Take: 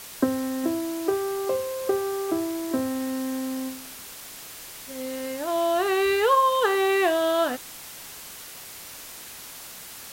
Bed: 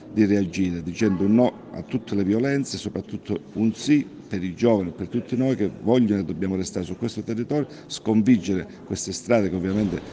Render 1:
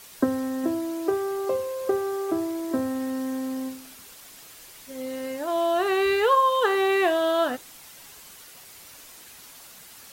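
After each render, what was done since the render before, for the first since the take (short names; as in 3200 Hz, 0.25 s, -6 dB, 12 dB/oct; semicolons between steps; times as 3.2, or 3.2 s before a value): denoiser 7 dB, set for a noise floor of -42 dBFS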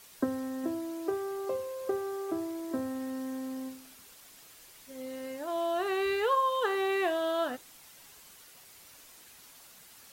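gain -7.5 dB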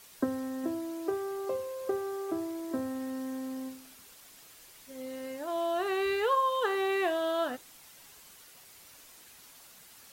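nothing audible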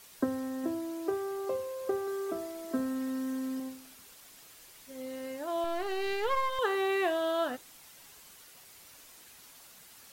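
2.07–3.6 comb 4.5 ms, depth 61%; 5.64–6.59 half-wave gain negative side -12 dB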